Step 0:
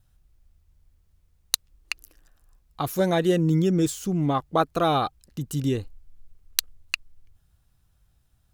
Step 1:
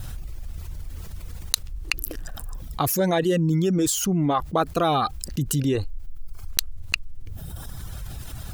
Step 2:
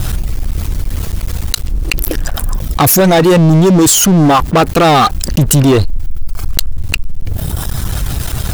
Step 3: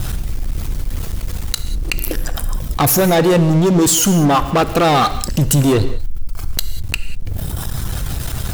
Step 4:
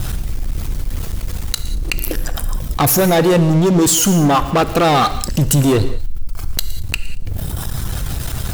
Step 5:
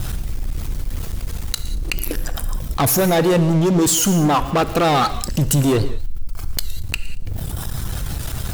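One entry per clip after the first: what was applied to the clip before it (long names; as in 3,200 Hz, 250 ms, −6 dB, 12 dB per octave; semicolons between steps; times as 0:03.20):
reverb reduction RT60 0.86 s; envelope flattener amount 70%; level −1.5 dB
leveller curve on the samples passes 5
reverb whose tail is shaped and stops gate 220 ms flat, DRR 11 dB; level −5 dB
delay with a high-pass on its return 115 ms, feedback 31%, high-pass 3,800 Hz, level −17.5 dB
wow of a warped record 78 rpm, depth 100 cents; level −3 dB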